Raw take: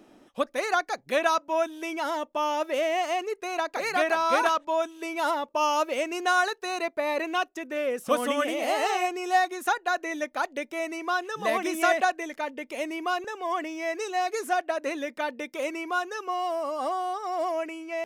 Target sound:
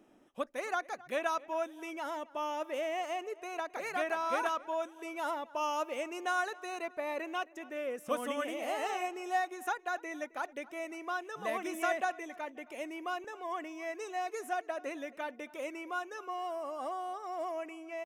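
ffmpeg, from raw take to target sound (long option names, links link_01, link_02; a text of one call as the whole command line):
ffmpeg -i in.wav -filter_complex "[0:a]equalizer=frequency=4400:width_type=o:width=0.42:gain=-9,asplit=2[link_01][link_02];[link_02]adelay=267,lowpass=frequency=3400:poles=1,volume=-20.5dB,asplit=2[link_03][link_04];[link_04]adelay=267,lowpass=frequency=3400:poles=1,volume=0.47,asplit=2[link_05][link_06];[link_06]adelay=267,lowpass=frequency=3400:poles=1,volume=0.47[link_07];[link_01][link_03][link_05][link_07]amix=inputs=4:normalize=0,volume=-9dB" out.wav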